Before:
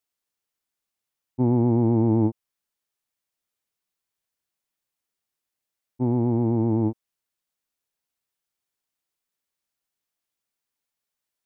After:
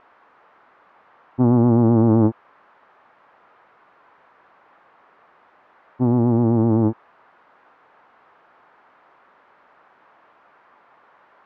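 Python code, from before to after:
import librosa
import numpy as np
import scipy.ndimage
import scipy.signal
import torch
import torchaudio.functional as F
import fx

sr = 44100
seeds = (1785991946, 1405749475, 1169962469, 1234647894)

y = x + 0.5 * 10.0 ** (-21.5 / 20.0) * np.diff(np.sign(x), prepend=np.sign(x[:1]))
y = scipy.signal.sosfilt(scipy.signal.butter(4, 1200.0, 'lowpass', fs=sr, output='sos'), y)
y = fx.doppler_dist(y, sr, depth_ms=0.3)
y = y * librosa.db_to_amplitude(5.0)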